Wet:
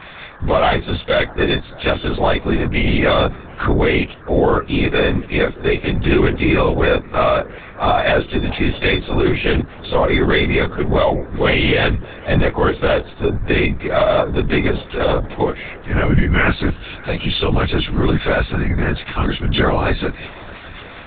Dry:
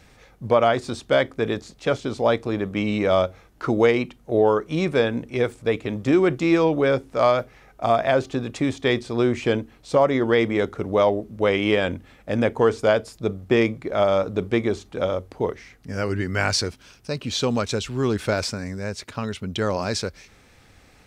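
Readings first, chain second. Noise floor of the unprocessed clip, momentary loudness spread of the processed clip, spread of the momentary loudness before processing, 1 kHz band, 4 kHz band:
-54 dBFS, 7 LU, 10 LU, +5.5 dB, +7.5 dB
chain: partials quantised in pitch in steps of 3 st; peaking EQ 98 Hz +14 dB 0.54 oct; in parallel at -2 dB: compression, threshold -31 dBFS, peak gain reduction 19.5 dB; on the sum: peak limiter -9.5 dBFS, peak gain reduction 8 dB; expander -38 dBFS; mains buzz 100 Hz, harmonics 18, -49 dBFS -1 dB/octave; on a send: filtered feedback delay 616 ms, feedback 60%, low-pass 1.8 kHz, level -22 dB; on the sum: LPC vocoder at 8 kHz whisper; tape noise reduction on one side only encoder only; trim +4 dB

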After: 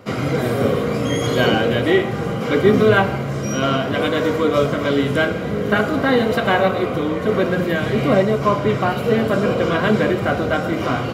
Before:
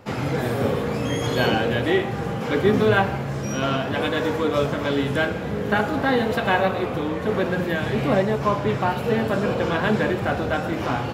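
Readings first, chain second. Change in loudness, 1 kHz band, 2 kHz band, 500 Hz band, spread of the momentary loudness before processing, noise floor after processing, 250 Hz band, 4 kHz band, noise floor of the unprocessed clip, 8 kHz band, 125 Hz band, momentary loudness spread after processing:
+4.5 dB, +2.5 dB, +3.5 dB, +5.0 dB, 5 LU, -24 dBFS, +4.5 dB, +4.0 dB, -28 dBFS, +4.5 dB, +3.5 dB, 5 LU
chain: comb of notches 870 Hz; trim +5 dB

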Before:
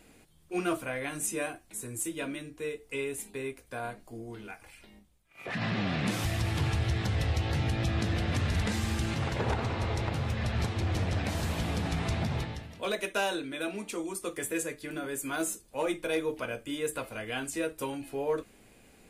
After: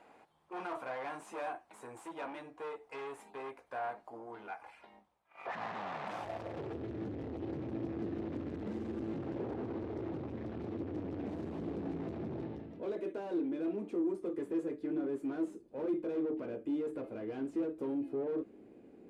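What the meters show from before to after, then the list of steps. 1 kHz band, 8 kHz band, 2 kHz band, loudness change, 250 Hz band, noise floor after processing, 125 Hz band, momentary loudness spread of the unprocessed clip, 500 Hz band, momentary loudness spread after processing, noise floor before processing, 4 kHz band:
-6.0 dB, under -25 dB, -14.0 dB, -7.0 dB, -2.0 dB, -63 dBFS, -16.5 dB, 8 LU, -4.0 dB, 10 LU, -59 dBFS, -21.0 dB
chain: valve stage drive 38 dB, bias 0.3; band-pass sweep 880 Hz -> 330 Hz, 6.11–6.88 s; trim +10 dB

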